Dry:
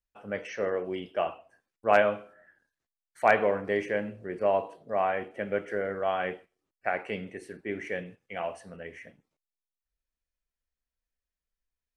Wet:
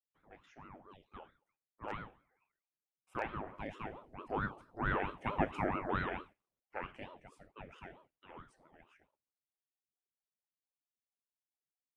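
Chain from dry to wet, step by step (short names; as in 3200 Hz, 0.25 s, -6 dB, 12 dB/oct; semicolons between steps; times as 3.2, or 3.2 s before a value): Doppler pass-by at 5.44, 9 m/s, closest 3.9 m; ring modulator with a swept carrier 470 Hz, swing 75%, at 4.5 Hz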